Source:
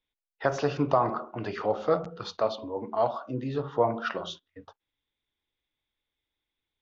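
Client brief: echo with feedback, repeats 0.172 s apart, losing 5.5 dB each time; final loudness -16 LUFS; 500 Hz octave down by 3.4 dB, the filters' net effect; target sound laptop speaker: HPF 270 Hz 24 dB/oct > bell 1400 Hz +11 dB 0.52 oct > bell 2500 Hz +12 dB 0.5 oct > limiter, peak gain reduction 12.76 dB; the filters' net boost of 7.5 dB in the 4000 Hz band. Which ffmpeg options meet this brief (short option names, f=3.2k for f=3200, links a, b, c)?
-af "highpass=f=270:w=0.5412,highpass=f=270:w=1.3066,equalizer=f=500:t=o:g=-5,equalizer=f=1.4k:t=o:w=0.52:g=11,equalizer=f=2.5k:t=o:w=0.5:g=12,equalizer=f=4k:t=o:g=5,aecho=1:1:172|344|516|688|860|1032|1204:0.531|0.281|0.149|0.079|0.0419|0.0222|0.0118,volume=15dB,alimiter=limit=-5.5dB:level=0:latency=1"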